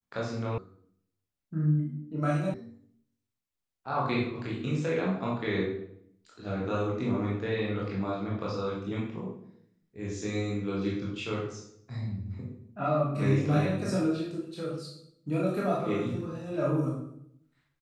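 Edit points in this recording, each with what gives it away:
0.58 sound cut off
2.54 sound cut off

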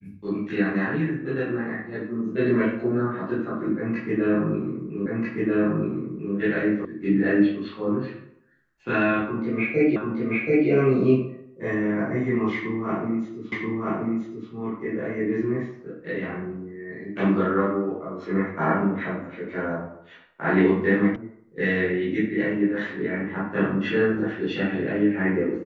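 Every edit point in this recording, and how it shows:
5.06 repeat of the last 1.29 s
6.85 sound cut off
9.96 repeat of the last 0.73 s
13.52 repeat of the last 0.98 s
21.16 sound cut off

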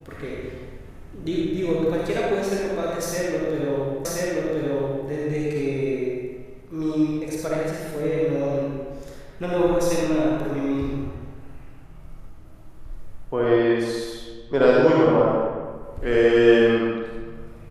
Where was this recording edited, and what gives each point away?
4.05 repeat of the last 1.03 s

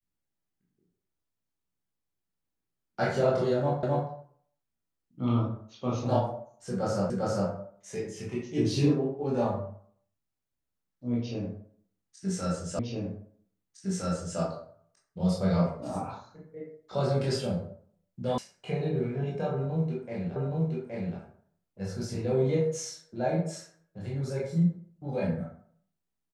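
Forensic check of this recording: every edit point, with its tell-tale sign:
3.83 repeat of the last 0.26 s
7.1 repeat of the last 0.4 s
12.79 repeat of the last 1.61 s
18.38 sound cut off
20.36 repeat of the last 0.82 s

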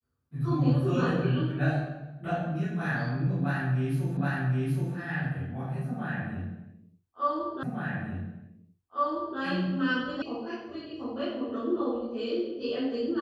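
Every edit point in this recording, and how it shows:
4.17 repeat of the last 0.77 s
7.63 repeat of the last 1.76 s
10.22 sound cut off

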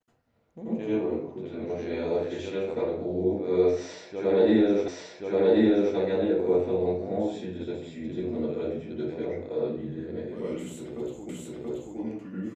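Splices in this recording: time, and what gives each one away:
4.88 repeat of the last 1.08 s
11.29 repeat of the last 0.68 s

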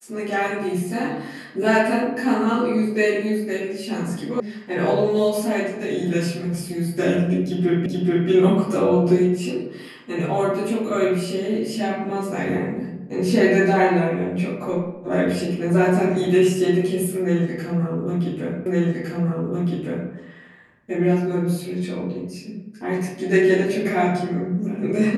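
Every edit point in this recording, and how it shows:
4.4 sound cut off
7.86 repeat of the last 0.43 s
18.66 repeat of the last 1.46 s

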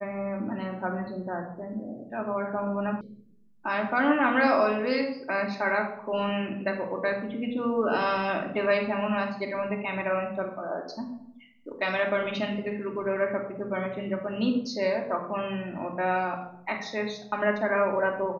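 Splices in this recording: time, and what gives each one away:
3.01 sound cut off

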